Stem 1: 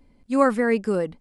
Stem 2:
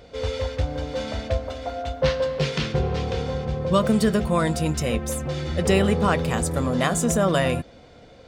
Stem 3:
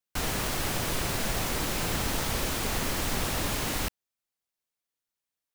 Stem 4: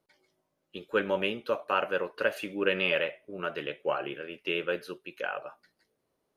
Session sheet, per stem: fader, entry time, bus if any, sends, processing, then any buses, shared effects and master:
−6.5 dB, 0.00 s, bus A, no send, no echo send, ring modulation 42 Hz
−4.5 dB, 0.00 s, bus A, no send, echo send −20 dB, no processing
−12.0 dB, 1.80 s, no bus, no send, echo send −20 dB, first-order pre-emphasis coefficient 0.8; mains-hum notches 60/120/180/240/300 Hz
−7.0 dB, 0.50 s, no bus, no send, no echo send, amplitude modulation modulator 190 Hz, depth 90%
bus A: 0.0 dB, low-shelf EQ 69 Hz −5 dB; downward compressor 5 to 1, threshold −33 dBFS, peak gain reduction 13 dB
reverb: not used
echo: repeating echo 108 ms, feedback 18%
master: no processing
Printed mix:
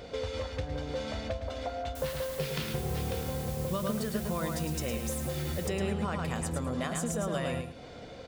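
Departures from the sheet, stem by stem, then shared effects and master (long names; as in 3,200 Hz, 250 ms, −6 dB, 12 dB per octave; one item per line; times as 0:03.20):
stem 1 −6.5 dB → −17.0 dB
stem 2 −4.5 dB → +3.0 dB
stem 4: muted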